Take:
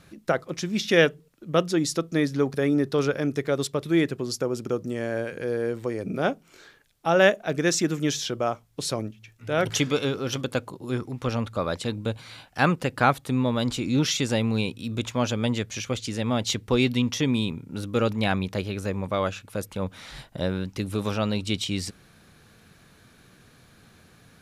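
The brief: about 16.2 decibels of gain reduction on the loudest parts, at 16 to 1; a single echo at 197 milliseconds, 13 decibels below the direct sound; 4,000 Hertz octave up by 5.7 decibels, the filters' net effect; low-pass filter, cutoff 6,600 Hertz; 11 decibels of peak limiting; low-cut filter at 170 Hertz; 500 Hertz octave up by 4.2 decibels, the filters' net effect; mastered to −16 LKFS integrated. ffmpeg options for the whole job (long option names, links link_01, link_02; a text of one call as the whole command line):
ffmpeg -i in.wav -af "highpass=170,lowpass=6600,equalizer=frequency=500:width_type=o:gain=5,equalizer=frequency=4000:width_type=o:gain=7.5,acompressor=threshold=-25dB:ratio=16,alimiter=limit=-20dB:level=0:latency=1,aecho=1:1:197:0.224,volume=16.5dB" out.wav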